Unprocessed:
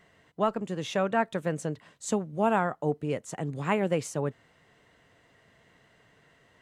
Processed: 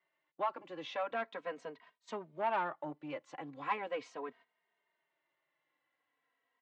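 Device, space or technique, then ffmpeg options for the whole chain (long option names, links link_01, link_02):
barber-pole flanger into a guitar amplifier: -filter_complex "[0:a]asplit=2[link_01][link_02];[link_02]adelay=2.9,afreqshift=-0.39[link_03];[link_01][link_03]amix=inputs=2:normalize=1,asoftclip=type=tanh:threshold=-22dB,highpass=110,equalizer=frequency=120:width_type=q:width=4:gain=-4,equalizer=frequency=200:width_type=q:width=4:gain=-9,equalizer=frequency=440:width_type=q:width=4:gain=-5,equalizer=frequency=1000:width_type=q:width=4:gain=7,equalizer=frequency=2200:width_type=q:width=4:gain=4,lowpass=frequency=4300:width=0.5412,lowpass=frequency=4300:width=1.3066,agate=range=-14dB:threshold=-53dB:ratio=16:detection=peak,highpass=280,highshelf=frequency=9000:gain=4,volume=-4.5dB"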